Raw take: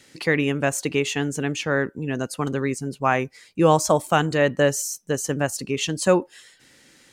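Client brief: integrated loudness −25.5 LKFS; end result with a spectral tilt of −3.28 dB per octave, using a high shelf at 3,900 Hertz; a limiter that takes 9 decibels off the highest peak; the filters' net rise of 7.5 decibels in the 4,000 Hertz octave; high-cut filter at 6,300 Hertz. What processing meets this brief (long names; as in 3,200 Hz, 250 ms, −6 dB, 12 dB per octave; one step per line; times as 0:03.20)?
low-pass filter 6,300 Hz
high-shelf EQ 3,900 Hz +8.5 dB
parametric band 4,000 Hz +6 dB
level −1 dB
brickwall limiter −13.5 dBFS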